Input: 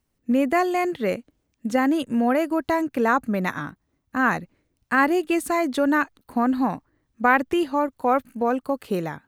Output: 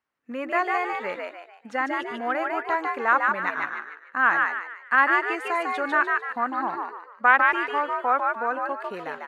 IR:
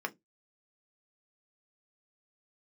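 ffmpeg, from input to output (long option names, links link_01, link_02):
-filter_complex "[0:a]aeval=exprs='0.562*(cos(1*acos(clip(val(0)/0.562,-1,1)))-cos(1*PI/2))+0.0708*(cos(2*acos(clip(val(0)/0.562,-1,1)))-cos(2*PI/2))':channel_layout=same,bandpass=frequency=1400:width_type=q:width=1.5:csg=0,asplit=6[link_01][link_02][link_03][link_04][link_05][link_06];[link_02]adelay=149,afreqshift=77,volume=-3dB[link_07];[link_03]adelay=298,afreqshift=154,volume=-11.4dB[link_08];[link_04]adelay=447,afreqshift=231,volume=-19.8dB[link_09];[link_05]adelay=596,afreqshift=308,volume=-28.2dB[link_10];[link_06]adelay=745,afreqshift=385,volume=-36.6dB[link_11];[link_01][link_07][link_08][link_09][link_10][link_11]amix=inputs=6:normalize=0,volume=3dB"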